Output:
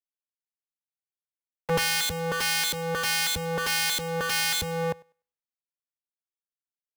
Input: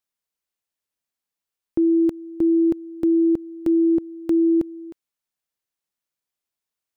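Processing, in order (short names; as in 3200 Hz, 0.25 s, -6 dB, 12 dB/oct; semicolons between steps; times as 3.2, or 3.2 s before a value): cycle switcher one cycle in 2, inverted; bell 83 Hz +6 dB 0.91 oct; in parallel at -2 dB: compressor 16:1, threshold -29 dBFS, peak gain reduction 13.5 dB; on the sum: pre-echo 86 ms -13 dB; wrapped overs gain 24.5 dB; on a send: thinning echo 99 ms, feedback 29%, high-pass 240 Hz, level -21 dB; on the sum: three-band expander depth 100%; gain +3.5 dB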